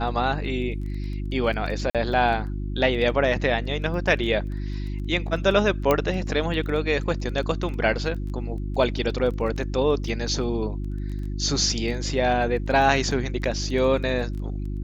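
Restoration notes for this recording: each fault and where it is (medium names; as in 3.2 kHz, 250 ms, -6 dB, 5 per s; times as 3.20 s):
crackle 11 per s -33 dBFS
hum 50 Hz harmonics 7 -29 dBFS
1.90–1.95 s: dropout 47 ms
5.91 s: pop -7 dBFS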